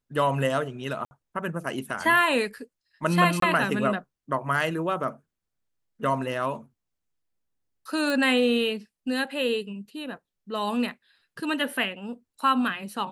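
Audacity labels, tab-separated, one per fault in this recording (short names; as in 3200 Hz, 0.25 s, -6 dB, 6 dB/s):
1.050000	1.110000	gap 60 ms
3.400000	3.420000	gap 23 ms
8.100000	8.100000	pop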